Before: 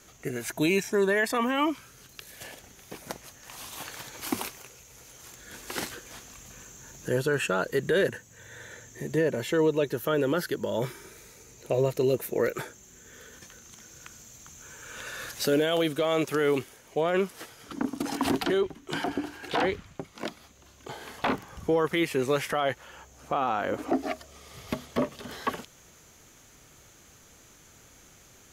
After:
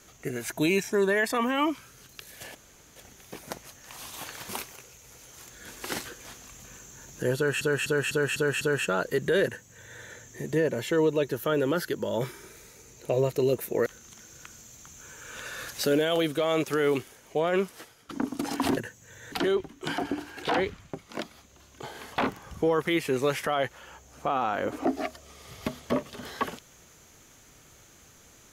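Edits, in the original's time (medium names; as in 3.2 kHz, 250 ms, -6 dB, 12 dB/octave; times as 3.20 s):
2.55 s: insert room tone 0.41 s
4.08–4.35 s: delete
7.22–7.47 s: loop, 6 plays
8.06–8.61 s: copy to 18.38 s
12.47–13.47 s: delete
17.24–17.70 s: fade out, to -13 dB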